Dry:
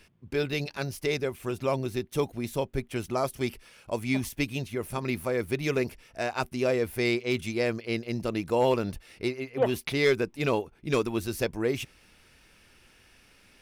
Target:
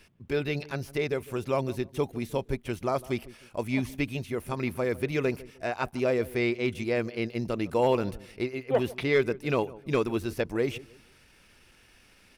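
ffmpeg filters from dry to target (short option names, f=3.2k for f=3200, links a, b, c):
-filter_complex "[0:a]acrossover=split=3300[a][b];[b]acompressor=threshold=-46dB:ratio=4:attack=1:release=60[c];[a][c]amix=inputs=2:normalize=0,atempo=1.1,asplit=2[d][e];[e]adelay=154,lowpass=f=900:p=1,volume=-18dB,asplit=2[f][g];[g]adelay=154,lowpass=f=900:p=1,volume=0.33,asplit=2[h][i];[i]adelay=154,lowpass=f=900:p=1,volume=0.33[j];[d][f][h][j]amix=inputs=4:normalize=0"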